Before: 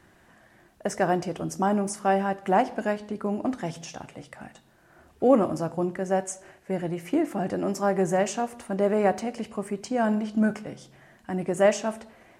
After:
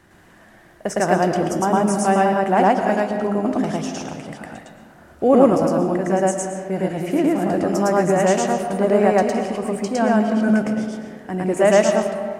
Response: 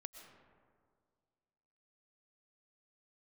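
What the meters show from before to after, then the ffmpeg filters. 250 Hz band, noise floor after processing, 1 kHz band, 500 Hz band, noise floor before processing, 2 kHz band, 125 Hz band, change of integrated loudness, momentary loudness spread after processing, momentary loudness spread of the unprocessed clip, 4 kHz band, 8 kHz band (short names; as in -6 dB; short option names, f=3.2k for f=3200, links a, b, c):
+8.0 dB, -49 dBFS, +8.0 dB, +8.0 dB, -59 dBFS, +8.0 dB, +7.5 dB, +7.5 dB, 12 LU, 16 LU, +7.5 dB, +7.5 dB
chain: -filter_complex "[0:a]asplit=2[a][b];[1:a]atrim=start_sample=2205,adelay=109[c];[b][c]afir=irnorm=-1:irlink=0,volume=7.5dB[d];[a][d]amix=inputs=2:normalize=0,volume=3.5dB"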